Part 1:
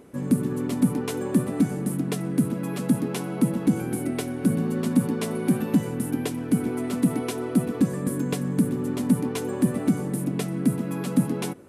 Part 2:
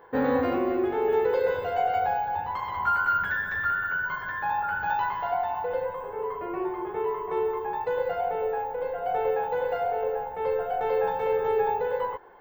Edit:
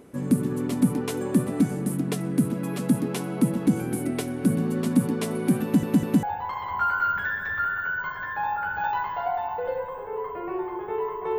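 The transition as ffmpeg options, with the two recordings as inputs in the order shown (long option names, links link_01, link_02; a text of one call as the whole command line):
ffmpeg -i cue0.wav -i cue1.wav -filter_complex "[0:a]apad=whole_dur=11.38,atrim=end=11.38,asplit=3[link_01][link_02][link_03];[link_01]atrim=end=5.832[link_04];[link_02]atrim=start=5.628:end=5.832[link_05];[link_03]atrim=start=5.628:end=5.832[link_06];[1:a]atrim=start=2.288:end=7.44[link_07];[link_04][link_05]acrossfade=duration=0.004:curve1=hsin:curve2=hsin[link_08];[link_08][link_06]acrossfade=duration=0.004:curve1=hsin:curve2=hsin[link_09];[link_09][link_07]acrossfade=duration=0.004:curve1=hsin:curve2=hsin" out.wav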